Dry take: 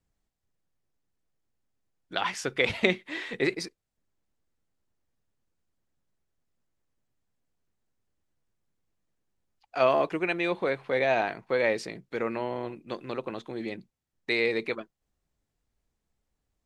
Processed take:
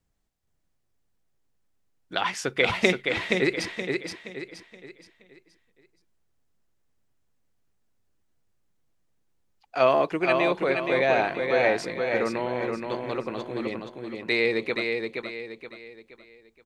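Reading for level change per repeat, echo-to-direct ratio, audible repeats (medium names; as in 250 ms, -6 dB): -8.5 dB, -4.0 dB, 4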